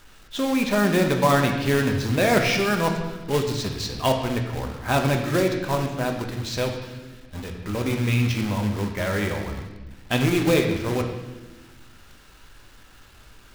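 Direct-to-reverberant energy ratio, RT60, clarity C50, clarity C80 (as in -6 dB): 2.5 dB, 1.2 s, 6.0 dB, 7.5 dB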